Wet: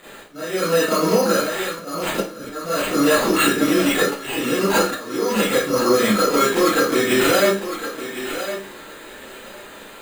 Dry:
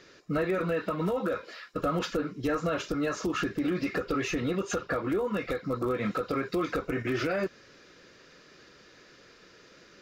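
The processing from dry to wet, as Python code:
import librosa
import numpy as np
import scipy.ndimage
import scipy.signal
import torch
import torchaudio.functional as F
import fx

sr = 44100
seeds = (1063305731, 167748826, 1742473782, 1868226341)

p1 = scipy.signal.sosfilt(scipy.signal.butter(2, 170.0, 'highpass', fs=sr, output='sos'), x)
p2 = fx.high_shelf(p1, sr, hz=3000.0, db=7.0)
p3 = fx.hum_notches(p2, sr, base_hz=50, count=8)
p4 = p3 + fx.echo_thinned(p3, sr, ms=1057, feedback_pct=17, hz=220.0, wet_db=-10.0, dry=0)
p5 = np.repeat(p4[::8], 8)[:len(p4)]
p6 = fx.auto_swell(p5, sr, attack_ms=511.0)
p7 = fx.rev_schroeder(p6, sr, rt60_s=0.34, comb_ms=28, drr_db=-9.5)
y = p7 * librosa.db_to_amplitude(3.5)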